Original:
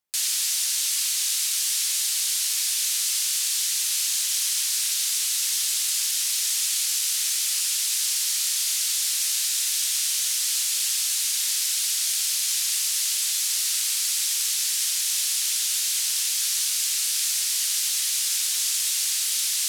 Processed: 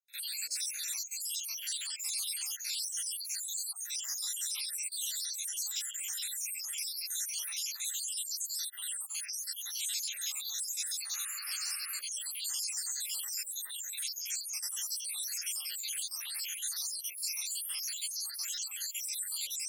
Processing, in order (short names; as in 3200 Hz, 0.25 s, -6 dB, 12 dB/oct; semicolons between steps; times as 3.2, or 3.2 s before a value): random spectral dropouts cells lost 81%; low shelf 380 Hz +10.5 dB; painted sound noise, 11.13–12, 1100–2900 Hz -44 dBFS; on a send: reverse echo 54 ms -21.5 dB; on the sum: ensemble effect; gain -2.5 dB